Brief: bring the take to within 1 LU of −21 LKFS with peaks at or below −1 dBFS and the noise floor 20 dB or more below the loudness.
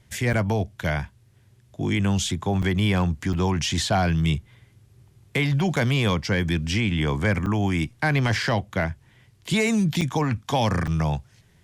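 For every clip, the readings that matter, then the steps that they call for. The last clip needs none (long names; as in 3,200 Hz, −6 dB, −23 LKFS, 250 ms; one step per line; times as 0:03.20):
number of dropouts 7; longest dropout 6.5 ms; integrated loudness −24.0 LKFS; sample peak −13.0 dBFS; target loudness −21.0 LKFS
→ repair the gap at 0:00.33/0:02.62/0:03.33/0:05.76/0:07.46/0:10.01/0:10.87, 6.5 ms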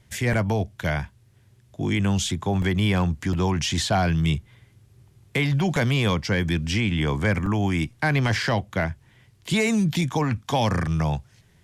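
number of dropouts 0; integrated loudness −24.0 LKFS; sample peak −13.0 dBFS; target loudness −21.0 LKFS
→ level +3 dB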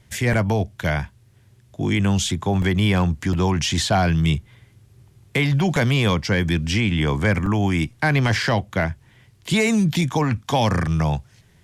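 integrated loudness −21.0 LKFS; sample peak −10.0 dBFS; background noise floor −55 dBFS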